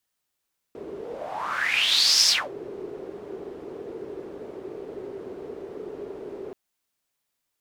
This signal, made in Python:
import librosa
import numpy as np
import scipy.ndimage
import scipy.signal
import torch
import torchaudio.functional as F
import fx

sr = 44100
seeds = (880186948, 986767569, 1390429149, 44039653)

y = fx.whoosh(sr, seeds[0], length_s=5.78, peak_s=1.53, rise_s=1.43, fall_s=0.24, ends_hz=400.0, peak_hz=5300.0, q=6.8, swell_db=19)